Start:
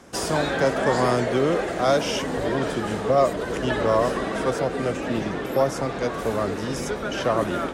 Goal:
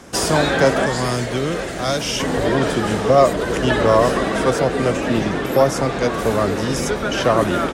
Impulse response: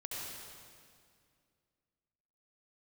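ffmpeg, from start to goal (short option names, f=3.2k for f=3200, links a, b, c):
-af "asetnsamples=n=441:p=0,asendcmd='0.86 equalizer g -11.5;2.2 equalizer g -2.5',equalizer=f=620:w=0.32:g=-2.5,aecho=1:1:976:0.119,volume=8.5dB"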